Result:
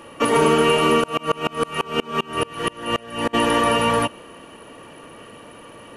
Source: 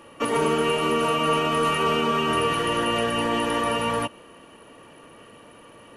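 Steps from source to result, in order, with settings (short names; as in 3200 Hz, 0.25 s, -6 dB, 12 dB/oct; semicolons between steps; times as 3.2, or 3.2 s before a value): 1–3.33 dB-ramp tremolo swelling 7.7 Hz -> 2.9 Hz, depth 30 dB; gain +6 dB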